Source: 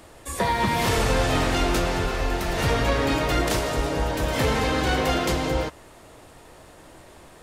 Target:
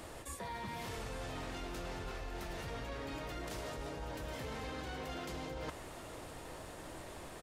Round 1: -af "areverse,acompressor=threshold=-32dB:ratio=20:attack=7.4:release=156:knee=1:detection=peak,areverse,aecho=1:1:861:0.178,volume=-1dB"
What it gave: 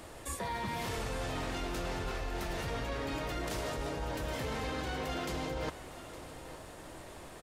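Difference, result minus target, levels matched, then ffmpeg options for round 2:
downward compressor: peak gain reduction −6 dB
-af "areverse,acompressor=threshold=-38.5dB:ratio=20:attack=7.4:release=156:knee=1:detection=peak,areverse,aecho=1:1:861:0.178,volume=-1dB"

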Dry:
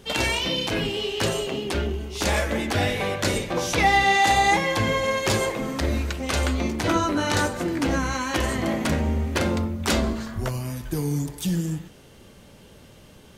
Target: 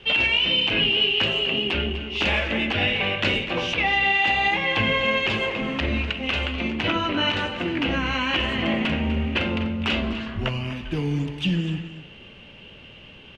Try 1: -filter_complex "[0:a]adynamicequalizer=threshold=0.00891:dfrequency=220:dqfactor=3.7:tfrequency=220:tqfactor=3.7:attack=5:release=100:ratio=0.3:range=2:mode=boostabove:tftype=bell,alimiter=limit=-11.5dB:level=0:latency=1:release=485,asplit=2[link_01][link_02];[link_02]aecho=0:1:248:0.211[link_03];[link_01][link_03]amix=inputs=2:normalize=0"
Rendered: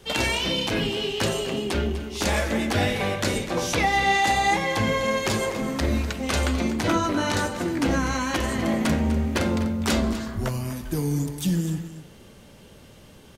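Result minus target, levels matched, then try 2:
2,000 Hz band −3.0 dB
-filter_complex "[0:a]adynamicequalizer=threshold=0.00891:dfrequency=220:dqfactor=3.7:tfrequency=220:tqfactor=3.7:attack=5:release=100:ratio=0.3:range=2:mode=boostabove:tftype=bell,lowpass=frequency=2800:width_type=q:width=6.4,alimiter=limit=-11.5dB:level=0:latency=1:release=485,asplit=2[link_01][link_02];[link_02]aecho=0:1:248:0.211[link_03];[link_01][link_03]amix=inputs=2:normalize=0"

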